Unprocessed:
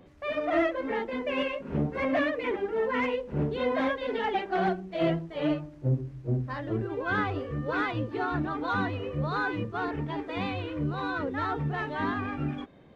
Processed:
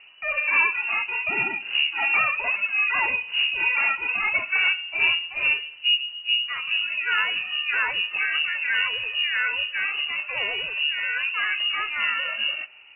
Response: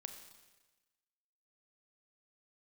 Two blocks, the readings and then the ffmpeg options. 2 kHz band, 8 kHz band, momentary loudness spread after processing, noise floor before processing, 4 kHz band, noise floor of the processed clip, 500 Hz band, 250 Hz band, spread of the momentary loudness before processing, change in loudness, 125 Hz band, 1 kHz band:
+13.0 dB, n/a, 4 LU, -47 dBFS, +20.0 dB, -41 dBFS, -13.0 dB, under -15 dB, 5 LU, +8.0 dB, under -20 dB, -0.5 dB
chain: -filter_complex "[0:a]asplit=2[a][b];[1:a]atrim=start_sample=2205,highshelf=f=3.2k:g=12[c];[b][c]afir=irnorm=-1:irlink=0,volume=-10.5dB[d];[a][d]amix=inputs=2:normalize=0,lowpass=f=2.6k:t=q:w=0.5098,lowpass=f=2.6k:t=q:w=0.6013,lowpass=f=2.6k:t=q:w=0.9,lowpass=f=2.6k:t=q:w=2.563,afreqshift=-3000,volume=3.5dB"

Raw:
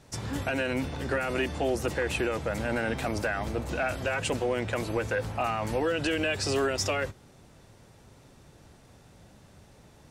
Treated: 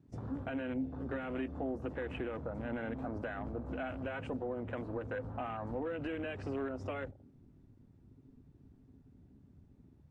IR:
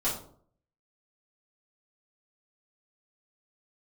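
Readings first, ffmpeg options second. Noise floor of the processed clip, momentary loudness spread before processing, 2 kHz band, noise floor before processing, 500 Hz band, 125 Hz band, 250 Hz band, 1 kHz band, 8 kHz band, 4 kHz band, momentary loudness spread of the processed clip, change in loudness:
-63 dBFS, 4 LU, -14.0 dB, -56 dBFS, -10.5 dB, -9.0 dB, -6.0 dB, -11.0 dB, under -35 dB, -20.5 dB, 3 LU, -10.0 dB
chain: -filter_complex "[0:a]lowpass=f=1.8k:p=1,equalizer=f=260:w=8:g=9,asplit=2[a][b];[1:a]atrim=start_sample=2205,lowpass=2.8k[c];[b][c]afir=irnorm=-1:irlink=0,volume=-26.5dB[d];[a][d]amix=inputs=2:normalize=0,acompressor=threshold=-35dB:ratio=2,afwtdn=0.00794,volume=-4.5dB" -ar 32000 -c:a libvorbis -b:a 64k

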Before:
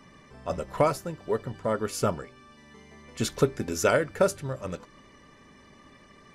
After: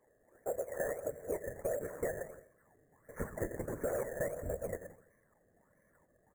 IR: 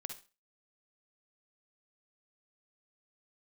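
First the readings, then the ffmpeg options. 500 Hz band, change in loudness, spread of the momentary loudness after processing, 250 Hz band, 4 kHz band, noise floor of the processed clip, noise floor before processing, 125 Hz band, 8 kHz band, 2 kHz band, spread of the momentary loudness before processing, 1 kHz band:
-9.5 dB, -11.5 dB, 9 LU, -13.5 dB, under -40 dB, -72 dBFS, -55 dBFS, -13.5 dB, -13.0 dB, -11.5 dB, 16 LU, -16.5 dB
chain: -filter_complex "[0:a]asplit=3[a][b][c];[a]bandpass=f=530:t=q:w=8,volume=0dB[d];[b]bandpass=f=1.84k:t=q:w=8,volume=-6dB[e];[c]bandpass=f=2.48k:t=q:w=8,volume=-9dB[f];[d][e][f]amix=inputs=3:normalize=0,agate=range=-14dB:threshold=-59dB:ratio=16:detection=peak,asplit=2[g][h];[1:a]atrim=start_sample=2205,adelay=115[i];[h][i]afir=irnorm=-1:irlink=0,volume=-15dB[j];[g][j]amix=inputs=2:normalize=0,aresample=11025,aresample=44100,afftfilt=real='hypot(re,im)*cos(2*PI*random(0))':imag='hypot(re,im)*sin(2*PI*random(1))':win_size=512:overlap=0.75,asubboost=boost=8.5:cutoff=140,asoftclip=type=hard:threshold=-27.5dB,asplit=2[k][l];[l]adelay=84,lowpass=f=1.8k:p=1,volume=-19dB,asplit=2[m][n];[n]adelay=84,lowpass=f=1.8k:p=1,volume=0.49,asplit=2[o][p];[p]adelay=84,lowpass=f=1.8k:p=1,volume=0.49,asplit=2[q][r];[r]adelay=84,lowpass=f=1.8k:p=1,volume=0.49[s];[k][m][o][q][s]amix=inputs=5:normalize=0,acrusher=samples=15:mix=1:aa=0.000001:lfo=1:lforange=9:lforate=1.5,asuperstop=centerf=3700:order=12:qfactor=0.77,alimiter=level_in=10dB:limit=-24dB:level=0:latency=1:release=15,volume=-10dB,acompressor=threshold=-53dB:ratio=3,volume=17dB"

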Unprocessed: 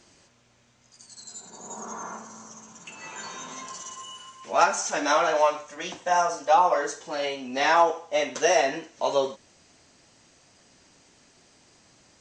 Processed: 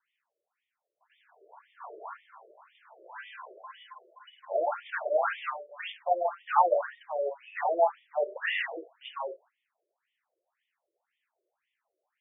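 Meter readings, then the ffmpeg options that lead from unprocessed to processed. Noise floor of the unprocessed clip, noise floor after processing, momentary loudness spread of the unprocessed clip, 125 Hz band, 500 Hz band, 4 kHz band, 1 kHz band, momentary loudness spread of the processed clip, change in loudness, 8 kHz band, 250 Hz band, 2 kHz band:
-61 dBFS, under -85 dBFS, 20 LU, under -40 dB, -5.0 dB, -11.0 dB, -6.5 dB, 21 LU, -5.5 dB, under -40 dB, -15.5 dB, -6.0 dB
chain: -af "agate=range=-16dB:threshold=-50dB:ratio=16:detection=peak,afftfilt=real='re*between(b*sr/1024,450*pow(2600/450,0.5+0.5*sin(2*PI*1.9*pts/sr))/1.41,450*pow(2600/450,0.5+0.5*sin(2*PI*1.9*pts/sr))*1.41)':imag='im*between(b*sr/1024,450*pow(2600/450,0.5+0.5*sin(2*PI*1.9*pts/sr))/1.41,450*pow(2600/450,0.5+0.5*sin(2*PI*1.9*pts/sr))*1.41)':win_size=1024:overlap=0.75"

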